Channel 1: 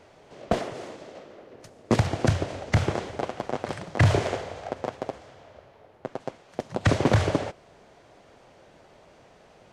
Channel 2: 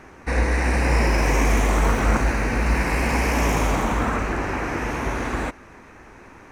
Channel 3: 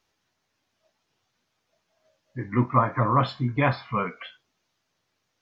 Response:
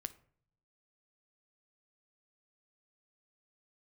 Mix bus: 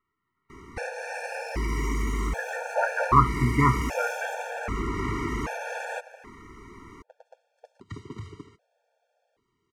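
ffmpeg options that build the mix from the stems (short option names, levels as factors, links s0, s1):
-filter_complex "[0:a]adelay=1050,volume=0.133[s0];[1:a]acompressor=threshold=0.0631:ratio=6,adelay=500,volume=1.06[s1];[2:a]dynaudnorm=f=250:g=5:m=5.31,lowpass=f=1600:t=q:w=2.7,volume=0.562[s2];[s0][s1][s2]amix=inputs=3:normalize=0,afftfilt=real='re*gt(sin(2*PI*0.64*pts/sr)*(1-2*mod(floor(b*sr/1024/460),2)),0)':imag='im*gt(sin(2*PI*0.64*pts/sr)*(1-2*mod(floor(b*sr/1024/460),2)),0)':win_size=1024:overlap=0.75"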